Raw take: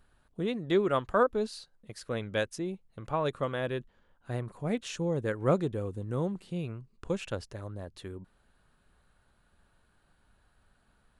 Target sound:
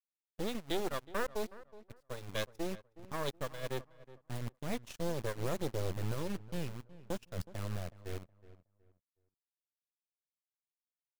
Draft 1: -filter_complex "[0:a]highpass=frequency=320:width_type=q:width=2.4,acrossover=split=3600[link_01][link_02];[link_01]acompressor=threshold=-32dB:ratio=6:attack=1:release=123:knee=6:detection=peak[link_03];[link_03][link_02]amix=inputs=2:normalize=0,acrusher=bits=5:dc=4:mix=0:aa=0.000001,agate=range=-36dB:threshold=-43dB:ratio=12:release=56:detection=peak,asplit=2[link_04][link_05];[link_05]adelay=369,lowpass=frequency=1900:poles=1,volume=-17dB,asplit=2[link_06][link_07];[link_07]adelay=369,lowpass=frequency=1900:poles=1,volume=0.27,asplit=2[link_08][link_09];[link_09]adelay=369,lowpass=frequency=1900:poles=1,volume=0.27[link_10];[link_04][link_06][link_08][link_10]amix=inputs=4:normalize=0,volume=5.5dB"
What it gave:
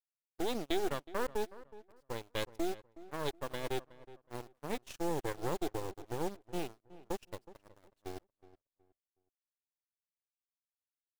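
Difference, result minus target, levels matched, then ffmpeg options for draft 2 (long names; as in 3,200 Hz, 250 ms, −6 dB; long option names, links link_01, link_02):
125 Hz band −7.5 dB
-filter_complex "[0:a]highpass=frequency=80:width_type=q:width=2.4,acrossover=split=3600[link_01][link_02];[link_01]acompressor=threshold=-32dB:ratio=6:attack=1:release=123:knee=6:detection=peak[link_03];[link_03][link_02]amix=inputs=2:normalize=0,acrusher=bits=5:dc=4:mix=0:aa=0.000001,agate=range=-36dB:threshold=-43dB:ratio=12:release=56:detection=peak,asplit=2[link_04][link_05];[link_05]adelay=369,lowpass=frequency=1900:poles=1,volume=-17dB,asplit=2[link_06][link_07];[link_07]adelay=369,lowpass=frequency=1900:poles=1,volume=0.27,asplit=2[link_08][link_09];[link_09]adelay=369,lowpass=frequency=1900:poles=1,volume=0.27[link_10];[link_04][link_06][link_08][link_10]amix=inputs=4:normalize=0,volume=5.5dB"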